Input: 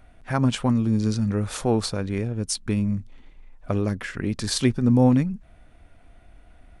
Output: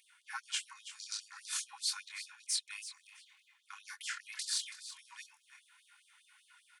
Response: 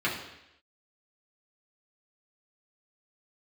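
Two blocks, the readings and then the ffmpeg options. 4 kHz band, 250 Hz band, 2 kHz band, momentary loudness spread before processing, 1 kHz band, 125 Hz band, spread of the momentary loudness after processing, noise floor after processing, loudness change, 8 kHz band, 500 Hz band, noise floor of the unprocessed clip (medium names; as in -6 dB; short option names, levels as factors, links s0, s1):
-5.0 dB, under -40 dB, -8.5 dB, 10 LU, -19.0 dB, under -40 dB, 17 LU, -71 dBFS, -15.5 dB, -4.5 dB, under -40 dB, -53 dBFS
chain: -filter_complex "[0:a]deesser=0.4,highshelf=f=2600:g=8.5,bandreject=f=1200:w=16,aecho=1:1:2.8:0.64,areverse,acompressor=threshold=0.0355:ratio=5,areverse,flanger=delay=22.5:depth=7.5:speed=2,asplit=2[s0][s1];[s1]aecho=0:1:329|658:0.224|0.0381[s2];[s0][s2]amix=inputs=2:normalize=0,afftfilt=real='re*gte(b*sr/1024,780*pow(3100/780,0.5+0.5*sin(2*PI*5*pts/sr)))':imag='im*gte(b*sr/1024,780*pow(3100/780,0.5+0.5*sin(2*PI*5*pts/sr)))':win_size=1024:overlap=0.75"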